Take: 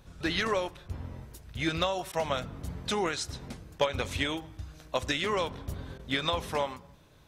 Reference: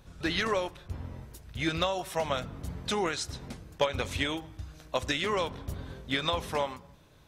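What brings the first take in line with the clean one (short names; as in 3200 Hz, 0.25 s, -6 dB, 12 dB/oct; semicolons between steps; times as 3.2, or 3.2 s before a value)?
interpolate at 2.12/5.98, 11 ms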